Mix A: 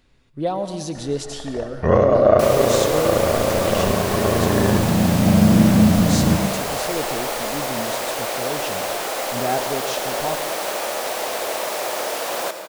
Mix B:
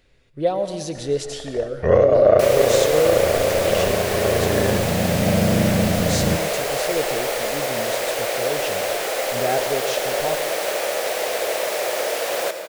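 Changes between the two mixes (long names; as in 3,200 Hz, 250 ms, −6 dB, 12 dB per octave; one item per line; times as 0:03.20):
first sound: send −11.5 dB
master: add octave-band graphic EQ 250/500/1,000/2,000 Hz −6/+7/−6/+4 dB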